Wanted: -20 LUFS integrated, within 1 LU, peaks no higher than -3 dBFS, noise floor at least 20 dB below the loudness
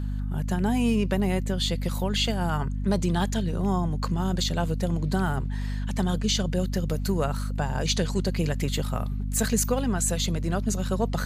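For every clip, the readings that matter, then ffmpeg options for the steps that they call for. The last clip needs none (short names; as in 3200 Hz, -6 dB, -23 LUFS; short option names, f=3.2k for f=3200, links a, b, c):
hum 50 Hz; harmonics up to 250 Hz; hum level -26 dBFS; loudness -26.5 LUFS; peak -11.0 dBFS; loudness target -20.0 LUFS
-> -af "bandreject=f=50:t=h:w=6,bandreject=f=100:t=h:w=6,bandreject=f=150:t=h:w=6,bandreject=f=200:t=h:w=6,bandreject=f=250:t=h:w=6"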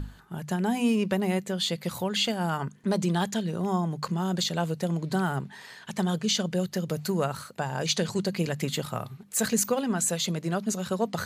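hum none; loudness -28.5 LUFS; peak -13.0 dBFS; loudness target -20.0 LUFS
-> -af "volume=8.5dB"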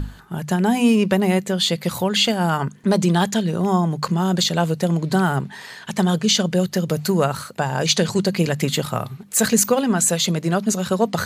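loudness -20.0 LUFS; peak -4.5 dBFS; noise floor -41 dBFS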